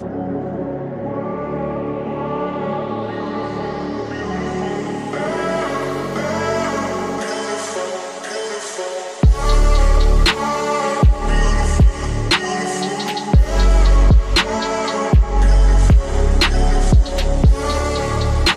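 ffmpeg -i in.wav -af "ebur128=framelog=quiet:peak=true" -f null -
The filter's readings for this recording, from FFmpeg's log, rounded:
Integrated loudness:
  I:         -18.7 LUFS
  Threshold: -28.7 LUFS
Loudness range:
  LRA:         7.9 LU
  Threshold: -38.5 LUFS
  LRA low:   -23.6 LUFS
  LRA high:  -15.7 LUFS
True peak:
  Peak:       -3.0 dBFS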